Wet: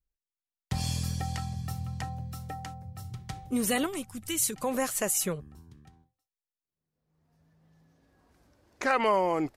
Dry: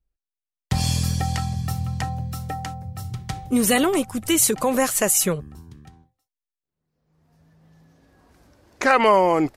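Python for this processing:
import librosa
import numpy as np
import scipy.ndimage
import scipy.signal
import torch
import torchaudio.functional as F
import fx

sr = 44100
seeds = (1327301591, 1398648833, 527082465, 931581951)

y = fx.peak_eq(x, sr, hz=620.0, db=-9.0, octaves=2.4, at=(3.86, 4.63))
y = y * librosa.db_to_amplitude(-9.0)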